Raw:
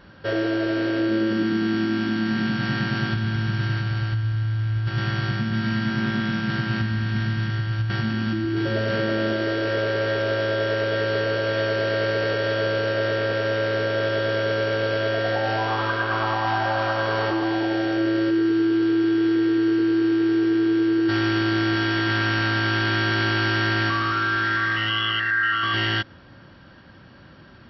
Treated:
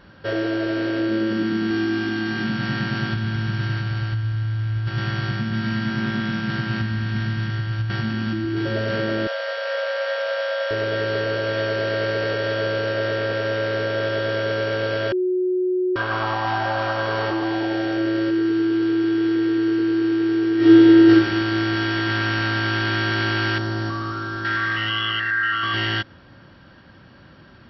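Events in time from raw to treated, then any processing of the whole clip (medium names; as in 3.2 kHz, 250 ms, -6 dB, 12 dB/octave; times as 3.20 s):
1.70–2.44 s: comb 2.5 ms, depth 54%
9.27–10.71 s: brick-wall FIR high-pass 470 Hz
15.12–15.96 s: bleep 366 Hz -18 dBFS
20.56–21.09 s: reverb throw, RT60 1 s, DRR -9 dB
23.58–24.45 s: peaking EQ 2.4 kHz -14.5 dB 1.5 oct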